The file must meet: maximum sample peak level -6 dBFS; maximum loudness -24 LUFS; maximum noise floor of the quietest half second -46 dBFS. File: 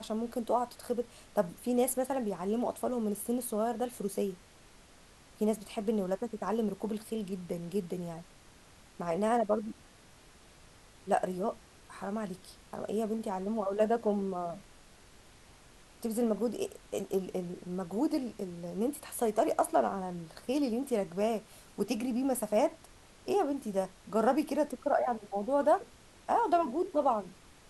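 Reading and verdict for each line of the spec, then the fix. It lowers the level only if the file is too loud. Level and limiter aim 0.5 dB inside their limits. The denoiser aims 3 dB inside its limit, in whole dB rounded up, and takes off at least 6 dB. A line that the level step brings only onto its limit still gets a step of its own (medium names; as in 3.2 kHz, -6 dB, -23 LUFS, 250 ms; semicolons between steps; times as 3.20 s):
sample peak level -14.0 dBFS: pass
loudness -33.0 LUFS: pass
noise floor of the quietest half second -57 dBFS: pass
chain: none needed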